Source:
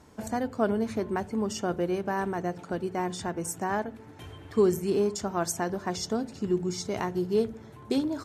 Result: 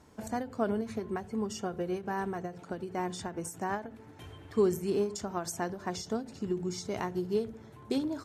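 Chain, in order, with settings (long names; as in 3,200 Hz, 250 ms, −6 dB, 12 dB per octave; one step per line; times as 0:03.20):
0:00.81–0:02.62: notch comb filter 300 Hz
every ending faded ahead of time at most 160 dB per second
level −3.5 dB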